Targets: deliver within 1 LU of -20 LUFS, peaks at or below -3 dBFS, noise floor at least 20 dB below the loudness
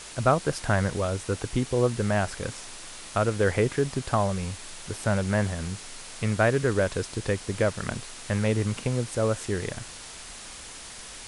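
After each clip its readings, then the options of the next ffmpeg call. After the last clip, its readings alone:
noise floor -42 dBFS; noise floor target -47 dBFS; loudness -27.0 LUFS; peak -8.5 dBFS; loudness target -20.0 LUFS
-> -af "afftdn=nr=6:nf=-42"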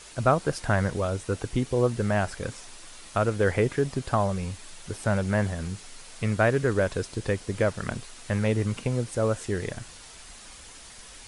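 noise floor -47 dBFS; noise floor target -48 dBFS
-> -af "afftdn=nr=6:nf=-47"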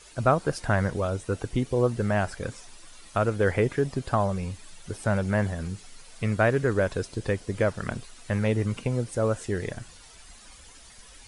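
noise floor -50 dBFS; loudness -27.5 LUFS; peak -8.5 dBFS; loudness target -20.0 LUFS
-> -af "volume=7.5dB,alimiter=limit=-3dB:level=0:latency=1"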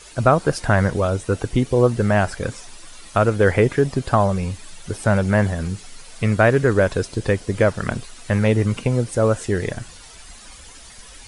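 loudness -20.0 LUFS; peak -3.0 dBFS; noise floor -42 dBFS

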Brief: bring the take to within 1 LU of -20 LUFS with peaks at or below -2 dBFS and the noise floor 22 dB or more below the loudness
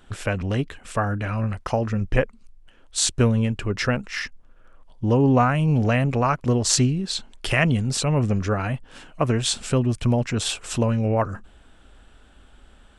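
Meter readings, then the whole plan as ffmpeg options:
loudness -23.0 LUFS; peak -1.5 dBFS; loudness target -20.0 LUFS
-> -af "volume=3dB,alimiter=limit=-2dB:level=0:latency=1"

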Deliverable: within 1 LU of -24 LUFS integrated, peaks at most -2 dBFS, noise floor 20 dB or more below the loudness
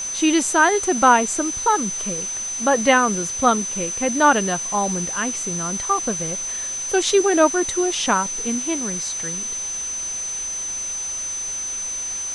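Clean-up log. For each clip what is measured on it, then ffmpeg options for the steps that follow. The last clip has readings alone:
steady tone 6100 Hz; tone level -25 dBFS; noise floor -28 dBFS; noise floor target -40 dBFS; loudness -20.0 LUFS; peak -3.0 dBFS; loudness target -24.0 LUFS
-> -af "bandreject=f=6.1k:w=30"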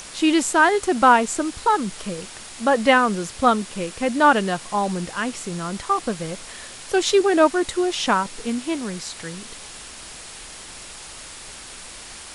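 steady tone none; noise floor -39 dBFS; noise floor target -41 dBFS
-> -af "afftdn=nr=6:nf=-39"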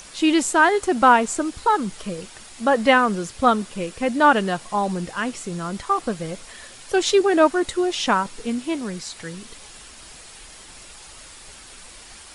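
noise floor -44 dBFS; loudness -20.5 LUFS; peak -3.0 dBFS; loudness target -24.0 LUFS
-> -af "volume=-3.5dB"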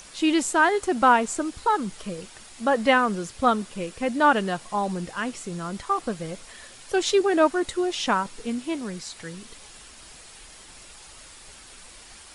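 loudness -24.0 LUFS; peak -6.5 dBFS; noise floor -47 dBFS

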